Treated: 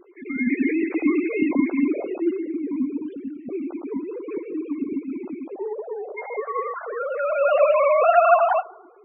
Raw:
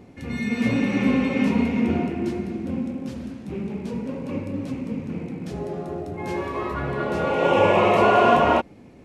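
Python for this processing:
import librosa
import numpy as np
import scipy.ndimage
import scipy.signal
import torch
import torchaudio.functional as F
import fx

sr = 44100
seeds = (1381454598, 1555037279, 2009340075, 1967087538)

y = fx.sine_speech(x, sr)
y = fx.echo_banded(y, sr, ms=107, feedback_pct=55, hz=1200.0, wet_db=-21)
y = fx.spec_topn(y, sr, count=32)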